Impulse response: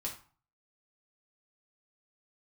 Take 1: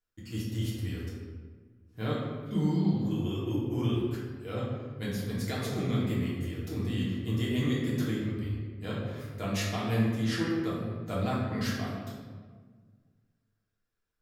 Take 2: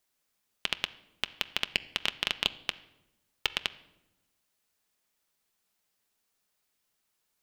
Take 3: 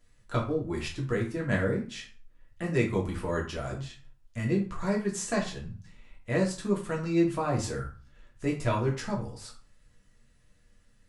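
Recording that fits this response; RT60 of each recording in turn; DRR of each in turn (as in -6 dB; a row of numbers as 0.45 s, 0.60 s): 3; 1.6 s, 1.0 s, 0.40 s; -7.0 dB, 11.0 dB, -2.0 dB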